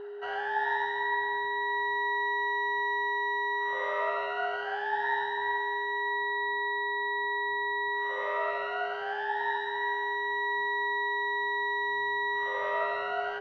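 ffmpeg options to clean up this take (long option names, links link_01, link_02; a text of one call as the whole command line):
ffmpeg -i in.wav -af "bandreject=frequency=410:width=30" out.wav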